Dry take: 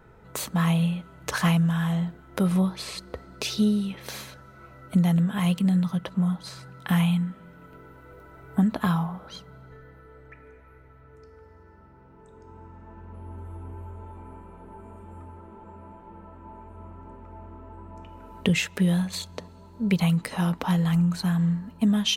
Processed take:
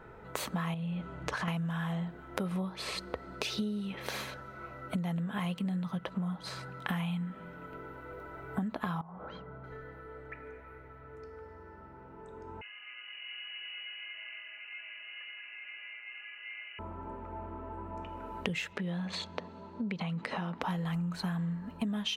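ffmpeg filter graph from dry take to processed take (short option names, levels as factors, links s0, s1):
-filter_complex "[0:a]asettb=1/sr,asplit=3[s0][s1][s2];[s0]atrim=end=0.744[s3];[s1]atrim=start=0.74:end=1.48,asetpts=PTS-STARTPTS,afade=t=in:d=0.004:c=qsin,afade=t=out:st=0.736:d=0.004:c=qsin,lowpass=8400,lowshelf=f=390:g=6.5,acompressor=threshold=0.0355:ratio=3:attack=3.2:release=140:knee=1:detection=peak[s4];[s2]atrim=start=1.476[s5];[s3][s4]acrossfade=d=0.004:c1=hsin:c2=qsin[s6];[s6][s5]acrossfade=d=0.004:c1=qsin:c2=hsin,asettb=1/sr,asplit=3[s7][s8][s9];[s7]atrim=end=9.014[s10];[s8]atrim=start=9.01:end=9.64,asetpts=PTS-STARTPTS,afade=t=in:d=0.004:c=qsin,afade=t=out:st=0.626:d=0.004:c=qsin,lowpass=1600,acompressor=threshold=0.00891:ratio=6:attack=3.2:release=140:knee=1:detection=peak[s11];[s9]atrim=start=9.636[s12];[s10][s11]acrossfade=d=0.004:c1=hsin:c2=qsin[s13];[s13][s12]acrossfade=d=0.004:c1=qsin:c2=hsin,asettb=1/sr,asplit=3[s14][s15][s16];[s14]atrim=end=12.614[s17];[s15]atrim=start=12.61:end=16.79,asetpts=PTS-STARTPTS,afade=t=in:d=0.004:c=qsin,afade=t=out:st=4.176:d=0.004:c=qsin,lowshelf=f=380:g=-9.5,lowpass=f=2600:t=q:w=0.5098,lowpass=f=2600:t=q:w=0.6013,lowpass=f=2600:t=q:w=0.9,lowpass=f=2600:t=q:w=2.563,afreqshift=-3000[s18];[s16]atrim=start=16.786[s19];[s17][s18]acrossfade=d=0.004:c1=hsin:c2=qsin[s20];[s20][s19]acrossfade=d=0.004:c1=qsin:c2=hsin,asettb=1/sr,asplit=3[s21][s22][s23];[s21]atrim=end=18.734[s24];[s22]atrim=start=18.73:end=20.62,asetpts=PTS-STARTPTS,afade=t=in:d=0.004:c=qsin,afade=t=out:st=1.886:d=0.004:c=qsin,equalizer=f=220:t=o:w=0.28:g=5,acompressor=threshold=0.0355:ratio=3:attack=3.2:release=140:knee=1:detection=peak,highpass=110,lowpass=5100[s25];[s23]atrim=start=20.616[s26];[s24][s25]acrossfade=d=0.004:c1=hsin:c2=qsin[s27];[s27][s26]acrossfade=d=0.004:c1=qsin:c2=hsin,bass=f=250:g=-6,treble=f=4000:g=-9,acompressor=threshold=0.0158:ratio=6,volume=1.58"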